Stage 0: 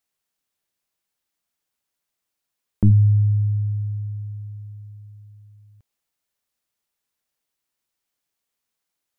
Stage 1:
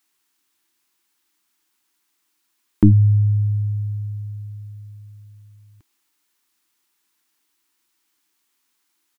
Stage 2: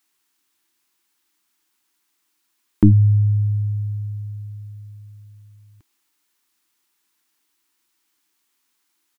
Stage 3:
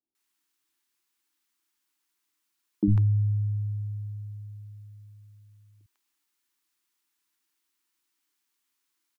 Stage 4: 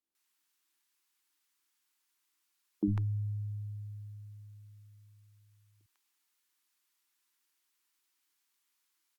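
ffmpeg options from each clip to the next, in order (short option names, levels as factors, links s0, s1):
-af "firequalizer=gain_entry='entry(160,0);entry(320,15);entry(520,-5);entry(910,10)':delay=0.05:min_phase=1,volume=1.12"
-af anull
-filter_complex "[0:a]acrossover=split=170|620[s0][s1][s2];[s0]adelay=50[s3];[s2]adelay=150[s4];[s3][s1][s4]amix=inputs=3:normalize=0,volume=0.398"
-af "lowshelf=f=280:g=-12" -ar 48000 -c:a libopus -b:a 128k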